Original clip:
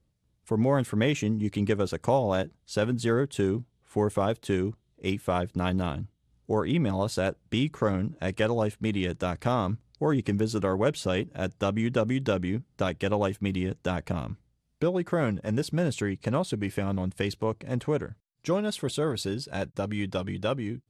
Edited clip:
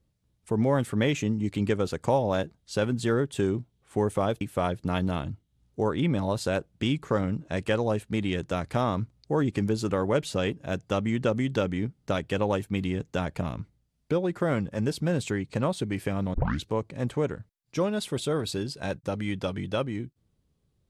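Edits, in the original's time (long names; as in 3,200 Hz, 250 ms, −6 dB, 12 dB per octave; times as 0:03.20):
0:04.41–0:05.12: remove
0:17.05: tape start 0.30 s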